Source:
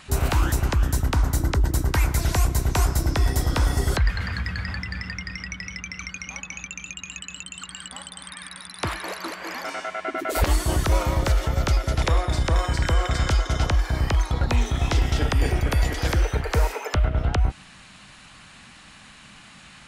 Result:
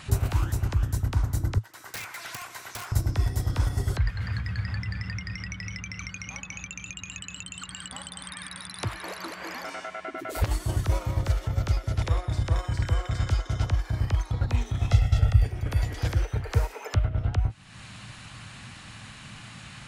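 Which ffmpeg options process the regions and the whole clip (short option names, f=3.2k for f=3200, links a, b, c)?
-filter_complex "[0:a]asettb=1/sr,asplit=3[a][b][c];[a]atrim=end=1.584[d];[b]atrim=start=1.58:end=2.92,asetpts=PTS-STARTPTS,afade=t=in:d=0.004:c=qsin,afade=t=out:st=1.336:d=0.004:c=qsin,acrossover=split=3400[e][f];[f]acompressor=threshold=-46dB:ratio=4:attack=1:release=60[g];[e][g]amix=inputs=2:normalize=0,highpass=1.3k,aeval=exprs='(mod(22.4*val(0)+1,2)-1)/22.4':c=same[h];[c]atrim=start=2.916[i];[d][h]acrossfade=d=0.004:c1=hsin:c2=qsin[j];[j][i]acrossfade=d=0.004:c1=qsin:c2=hsin,asettb=1/sr,asplit=3[k][l][m];[k]atrim=end=14.904[n];[l]atrim=start=14.9:end=15.45,asetpts=PTS-STARTPTS,afade=t=in:d=0.004:c=qsin,afade=t=out:st=0.546:d=0.004:c=qsin,bandreject=f=1.1k:w=21,asubboost=boost=6.5:cutoff=180,aecho=1:1:1.5:0.82,atrim=end_sample=24255[o];[m]atrim=start=15.446[p];[n][o]acrossfade=d=0.004:c1=hsin:c2=qsin[q];[q][p]acrossfade=d=0.004:c1=qsin:c2=hsin,acompressor=threshold=-37dB:ratio=3,agate=range=-7dB:threshold=-33dB:ratio=16:detection=peak,equalizer=f=110:w=2.2:g=14,volume=8.5dB"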